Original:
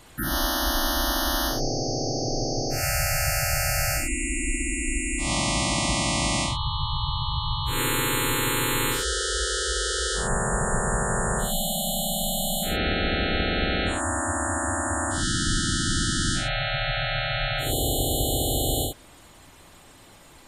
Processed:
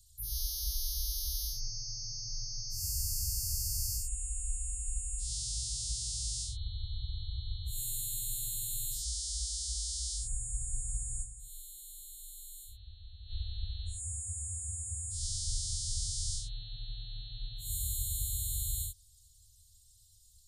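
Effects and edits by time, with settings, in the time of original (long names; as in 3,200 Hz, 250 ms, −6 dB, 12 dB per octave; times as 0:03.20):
0:11.22–0:13.32: duck −12 dB, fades 0.34 s exponential
whole clip: inverse Chebyshev band-stop filter 180–2,400 Hz, stop band 40 dB; level −7 dB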